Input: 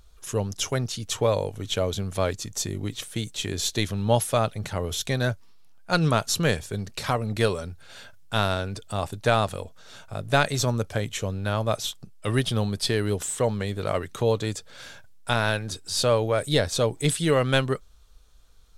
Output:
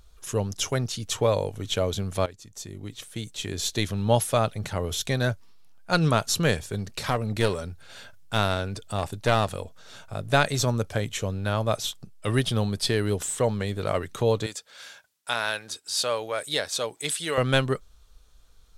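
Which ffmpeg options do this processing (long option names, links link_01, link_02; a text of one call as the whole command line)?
ffmpeg -i in.wav -filter_complex "[0:a]asettb=1/sr,asplit=3[link_01][link_02][link_03];[link_01]atrim=end=6.694[link_04];[link_02]atrim=start=6.69:end=9.56,asetpts=PTS-STARTPTS,afade=type=in:duration=0.004:curve=qsin,afade=type=out:start_time=2.866:duration=0.004:curve=qsin,aeval=exprs='clip(val(0),-1,0.0473)':channel_layout=same[link_05];[link_03]atrim=start=9.556[link_06];[link_04][link_05]acrossfade=duration=0.004:curve1=hsin:curve2=qsin[link_07];[link_07][link_06]acrossfade=duration=0.004:curve1=qsin:curve2=hsin,asettb=1/sr,asplit=3[link_08][link_09][link_10];[link_08]atrim=end=14.464[link_11];[link_09]atrim=start=14.46:end=17.38,asetpts=PTS-STARTPTS,afade=type=in:duration=0.004:curve=qsin,afade=type=out:start_time=2.916:duration=0.004:curve=qsin,highpass=frequency=1000:poles=1[link_12];[link_10]atrim=start=17.376[link_13];[link_11][link_12]acrossfade=duration=0.004:curve1=hsin:curve2=qsin[link_14];[link_14][link_13]acrossfade=duration=0.004:curve1=qsin:curve2=hsin,asplit=2[link_15][link_16];[link_15]atrim=end=2.26,asetpts=PTS-STARTPTS,afade=type=out:start_time=2.256:duration=0.004:curve=hsin:silence=0.141254[link_17];[link_16]atrim=start=2.26,asetpts=PTS-STARTPTS,afade=type=in:duration=1.72:silence=0.141254[link_18];[link_17][link_18]concat=n=2:v=0:a=1" out.wav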